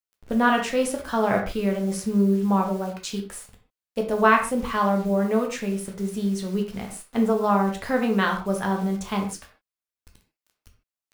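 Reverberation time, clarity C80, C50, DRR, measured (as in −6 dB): non-exponential decay, 12.0 dB, 8.0 dB, 1.5 dB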